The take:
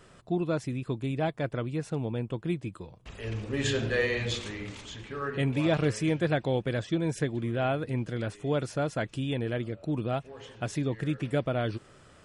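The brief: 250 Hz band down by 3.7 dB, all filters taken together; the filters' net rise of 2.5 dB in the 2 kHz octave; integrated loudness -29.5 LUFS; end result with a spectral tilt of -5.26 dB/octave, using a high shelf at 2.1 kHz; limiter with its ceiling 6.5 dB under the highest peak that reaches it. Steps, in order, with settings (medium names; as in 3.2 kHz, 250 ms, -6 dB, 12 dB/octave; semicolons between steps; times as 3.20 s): peaking EQ 250 Hz -5.5 dB; peaking EQ 2 kHz +5 dB; treble shelf 2.1 kHz -3.5 dB; trim +3.5 dB; peak limiter -17.5 dBFS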